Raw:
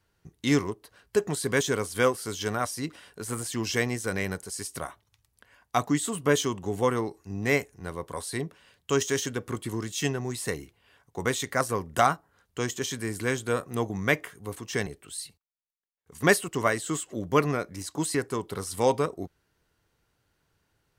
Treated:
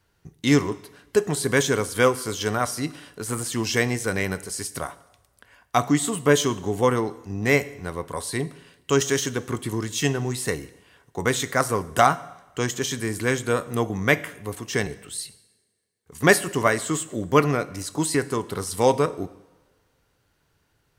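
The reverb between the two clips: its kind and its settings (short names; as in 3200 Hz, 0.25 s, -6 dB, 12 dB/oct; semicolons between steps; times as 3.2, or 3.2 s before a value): two-slope reverb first 0.86 s, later 2.2 s, from -20 dB, DRR 14.5 dB; gain +4.5 dB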